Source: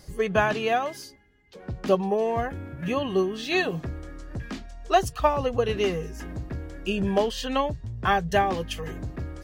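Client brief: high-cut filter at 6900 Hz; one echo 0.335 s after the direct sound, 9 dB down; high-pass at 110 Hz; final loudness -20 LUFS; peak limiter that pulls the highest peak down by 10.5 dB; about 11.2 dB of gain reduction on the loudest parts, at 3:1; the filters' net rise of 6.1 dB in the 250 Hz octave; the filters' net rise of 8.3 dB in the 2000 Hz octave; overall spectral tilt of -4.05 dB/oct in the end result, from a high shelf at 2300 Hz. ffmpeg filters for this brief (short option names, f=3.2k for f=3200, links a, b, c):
-af "highpass=110,lowpass=6.9k,equalizer=f=250:t=o:g=8.5,equalizer=f=2k:t=o:g=8.5,highshelf=f=2.3k:g=4.5,acompressor=threshold=-28dB:ratio=3,alimiter=level_in=1dB:limit=-24dB:level=0:latency=1,volume=-1dB,aecho=1:1:335:0.355,volume=14dB"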